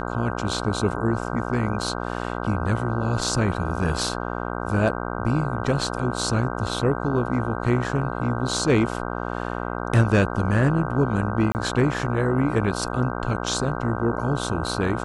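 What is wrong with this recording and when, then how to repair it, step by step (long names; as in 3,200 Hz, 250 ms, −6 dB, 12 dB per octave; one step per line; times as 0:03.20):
mains buzz 60 Hz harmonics 26 −29 dBFS
0:11.52–0:11.55: drop-out 29 ms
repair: hum removal 60 Hz, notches 26
repair the gap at 0:11.52, 29 ms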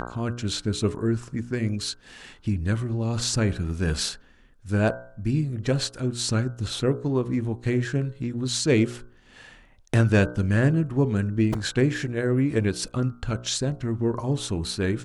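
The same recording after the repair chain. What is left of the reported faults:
none of them is left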